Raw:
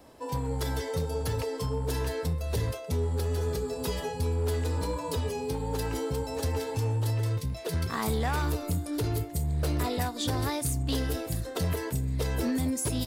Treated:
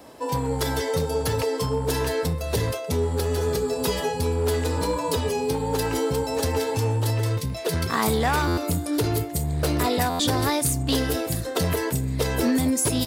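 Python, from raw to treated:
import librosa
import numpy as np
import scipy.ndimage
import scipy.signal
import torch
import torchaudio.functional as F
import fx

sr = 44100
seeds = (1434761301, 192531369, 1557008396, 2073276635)

y = fx.highpass(x, sr, hz=150.0, slope=6)
y = fx.buffer_glitch(y, sr, at_s=(8.47, 10.09), block=512, repeats=8)
y = F.gain(torch.from_numpy(y), 8.5).numpy()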